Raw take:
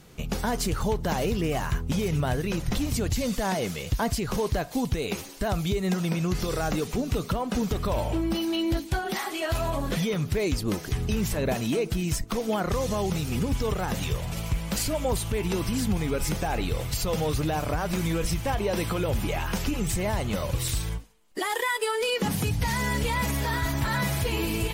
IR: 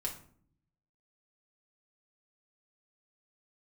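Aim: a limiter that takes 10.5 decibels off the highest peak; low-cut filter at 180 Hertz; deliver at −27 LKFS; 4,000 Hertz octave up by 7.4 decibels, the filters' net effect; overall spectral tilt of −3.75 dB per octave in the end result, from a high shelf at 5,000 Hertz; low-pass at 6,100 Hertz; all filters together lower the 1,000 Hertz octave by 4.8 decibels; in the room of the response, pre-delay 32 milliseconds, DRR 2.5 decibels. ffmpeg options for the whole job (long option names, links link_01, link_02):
-filter_complex "[0:a]highpass=180,lowpass=6100,equalizer=frequency=1000:width_type=o:gain=-7,equalizer=frequency=4000:width_type=o:gain=7.5,highshelf=frequency=5000:gain=7,alimiter=limit=-22.5dB:level=0:latency=1,asplit=2[link_01][link_02];[1:a]atrim=start_sample=2205,adelay=32[link_03];[link_02][link_03]afir=irnorm=-1:irlink=0,volume=-3.5dB[link_04];[link_01][link_04]amix=inputs=2:normalize=0,volume=2.5dB"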